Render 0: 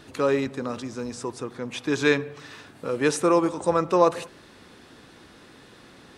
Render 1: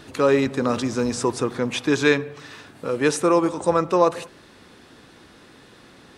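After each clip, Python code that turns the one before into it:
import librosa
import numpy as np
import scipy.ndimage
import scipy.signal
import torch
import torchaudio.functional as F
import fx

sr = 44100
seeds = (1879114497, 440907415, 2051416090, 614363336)

y = fx.rider(x, sr, range_db=5, speed_s=0.5)
y = y * librosa.db_to_amplitude(4.5)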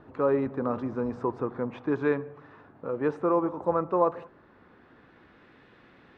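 y = fx.filter_sweep_lowpass(x, sr, from_hz=1100.0, to_hz=2200.0, start_s=3.98, end_s=5.53, q=1.2)
y = y * librosa.db_to_amplitude(-7.5)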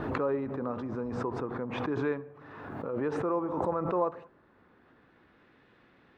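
y = fx.pre_swell(x, sr, db_per_s=35.0)
y = y * librosa.db_to_amplitude(-6.0)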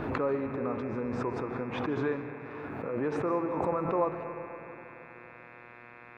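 y = fx.dmg_buzz(x, sr, base_hz=120.0, harmonics=22, level_db=-52.0, tilt_db=0, odd_only=False)
y = fx.rev_freeverb(y, sr, rt60_s=3.2, hf_ratio=0.3, predelay_ms=110, drr_db=10.0)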